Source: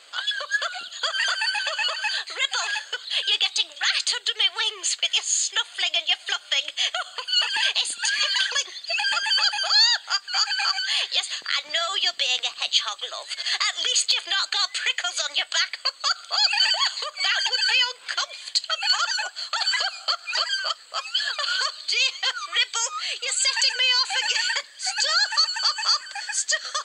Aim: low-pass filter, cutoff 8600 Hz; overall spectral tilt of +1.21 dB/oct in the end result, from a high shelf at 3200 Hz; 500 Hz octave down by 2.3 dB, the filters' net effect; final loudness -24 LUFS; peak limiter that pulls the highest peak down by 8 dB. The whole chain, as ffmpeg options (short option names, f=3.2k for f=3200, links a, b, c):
-af "lowpass=8.6k,equalizer=f=500:t=o:g=-3.5,highshelf=f=3.2k:g=6,volume=-2.5dB,alimiter=limit=-14.5dB:level=0:latency=1"